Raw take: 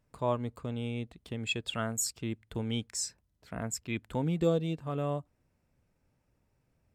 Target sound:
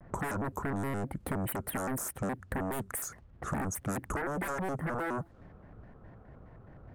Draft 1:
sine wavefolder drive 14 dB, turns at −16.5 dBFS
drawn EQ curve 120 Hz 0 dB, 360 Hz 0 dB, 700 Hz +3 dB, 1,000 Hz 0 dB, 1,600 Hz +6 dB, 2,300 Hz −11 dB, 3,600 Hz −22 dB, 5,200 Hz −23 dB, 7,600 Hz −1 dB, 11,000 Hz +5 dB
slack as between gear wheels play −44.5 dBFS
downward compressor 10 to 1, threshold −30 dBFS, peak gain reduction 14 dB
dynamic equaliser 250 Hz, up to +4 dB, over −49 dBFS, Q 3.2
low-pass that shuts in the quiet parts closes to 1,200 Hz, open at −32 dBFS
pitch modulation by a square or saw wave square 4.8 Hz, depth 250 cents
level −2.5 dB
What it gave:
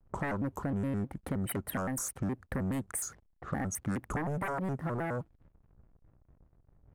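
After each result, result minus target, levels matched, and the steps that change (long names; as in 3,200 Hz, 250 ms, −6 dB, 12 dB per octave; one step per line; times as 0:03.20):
sine wavefolder: distortion −13 dB; slack as between gear wheels: distortion +10 dB
change: sine wavefolder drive 20 dB, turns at −16.5 dBFS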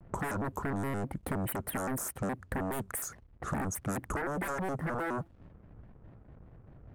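slack as between gear wheels: distortion +10 dB
change: slack as between gear wheels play −54.5 dBFS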